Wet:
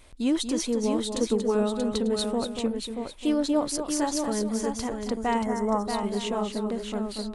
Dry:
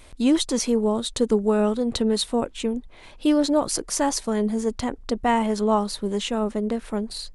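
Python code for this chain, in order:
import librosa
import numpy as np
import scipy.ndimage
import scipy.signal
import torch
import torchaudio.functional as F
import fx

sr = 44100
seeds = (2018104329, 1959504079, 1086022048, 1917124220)

y = fx.echo_multitap(x, sr, ms=(235, 632, 894), db=(-7.5, -6.0, -15.5))
y = fx.spec_box(y, sr, start_s=5.44, length_s=0.43, low_hz=2200.0, high_hz=5200.0, gain_db=-15)
y = y * librosa.db_to_amplitude(-5.5)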